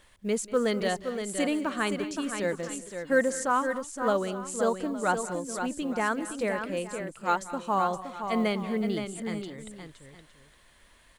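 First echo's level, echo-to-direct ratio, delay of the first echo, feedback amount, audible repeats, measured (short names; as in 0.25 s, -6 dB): -18.0 dB, -6.5 dB, 0.189 s, no steady repeat, 4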